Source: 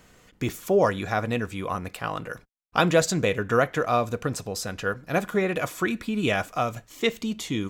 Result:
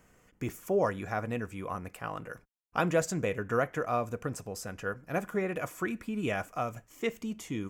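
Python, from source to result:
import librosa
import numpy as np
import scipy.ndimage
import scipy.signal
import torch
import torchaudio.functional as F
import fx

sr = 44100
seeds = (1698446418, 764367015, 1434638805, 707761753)

y = fx.peak_eq(x, sr, hz=3900.0, db=-12.5, octaves=0.61)
y = y * 10.0 ** (-7.0 / 20.0)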